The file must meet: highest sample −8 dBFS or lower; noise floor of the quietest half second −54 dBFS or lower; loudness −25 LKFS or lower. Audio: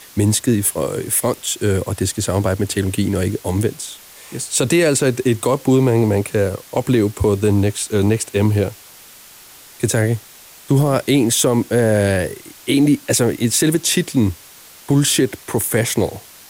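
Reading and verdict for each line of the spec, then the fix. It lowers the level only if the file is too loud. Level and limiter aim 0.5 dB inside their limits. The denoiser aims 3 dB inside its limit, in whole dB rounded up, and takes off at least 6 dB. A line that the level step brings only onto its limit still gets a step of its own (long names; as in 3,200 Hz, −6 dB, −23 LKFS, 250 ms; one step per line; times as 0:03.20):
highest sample −5.5 dBFS: out of spec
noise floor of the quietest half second −42 dBFS: out of spec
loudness −17.5 LKFS: out of spec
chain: broadband denoise 7 dB, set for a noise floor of −42 dBFS
level −8 dB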